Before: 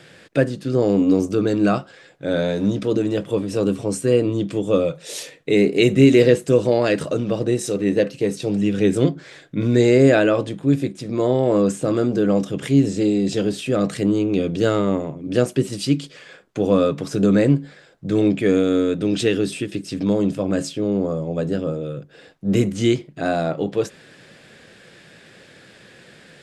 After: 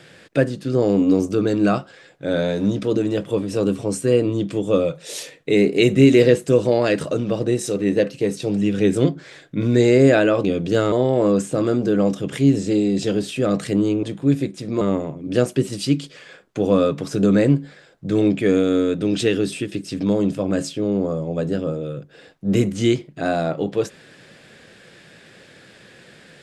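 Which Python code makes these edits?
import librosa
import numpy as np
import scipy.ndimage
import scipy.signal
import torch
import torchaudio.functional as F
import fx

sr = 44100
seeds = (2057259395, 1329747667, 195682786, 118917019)

y = fx.edit(x, sr, fx.swap(start_s=10.44, length_s=0.78, other_s=14.33, other_length_s=0.48), tone=tone)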